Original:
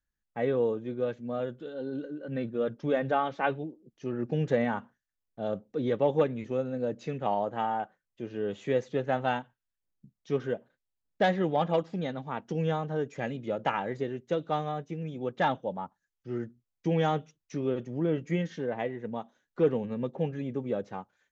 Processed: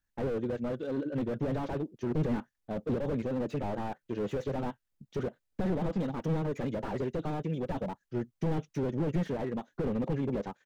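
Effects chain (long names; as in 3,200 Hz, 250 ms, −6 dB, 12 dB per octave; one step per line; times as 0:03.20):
tempo change 2×
slew-rate limiting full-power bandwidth 8.3 Hz
level +4 dB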